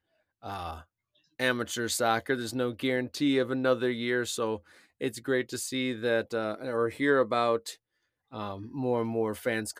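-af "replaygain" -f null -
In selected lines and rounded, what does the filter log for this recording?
track_gain = +9.5 dB
track_peak = 0.188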